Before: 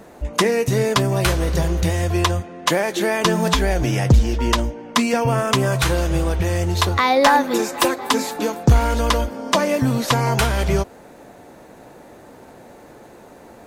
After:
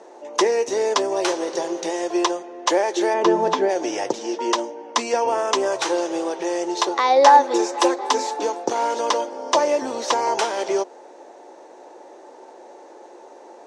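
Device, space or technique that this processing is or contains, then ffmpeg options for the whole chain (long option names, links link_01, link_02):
phone speaker on a table: -filter_complex "[0:a]asplit=3[link_01][link_02][link_03];[link_01]afade=type=out:start_time=3.13:duration=0.02[link_04];[link_02]aemphasis=mode=reproduction:type=riaa,afade=type=in:start_time=3.13:duration=0.02,afade=type=out:start_time=3.68:duration=0.02[link_05];[link_03]afade=type=in:start_time=3.68:duration=0.02[link_06];[link_04][link_05][link_06]amix=inputs=3:normalize=0,highpass=frequency=330:width=0.5412,highpass=frequency=330:width=1.3066,equalizer=frequency=360:width_type=q:width=4:gain=8,equalizer=frequency=550:width_type=q:width=4:gain=5,equalizer=frequency=870:width_type=q:width=4:gain=9,equalizer=frequency=1400:width_type=q:width=4:gain=-3,equalizer=frequency=2300:width_type=q:width=4:gain=-3,equalizer=frequency=5800:width_type=q:width=4:gain=7,lowpass=frequency=8000:width=0.5412,lowpass=frequency=8000:width=1.3066,volume=-4dB"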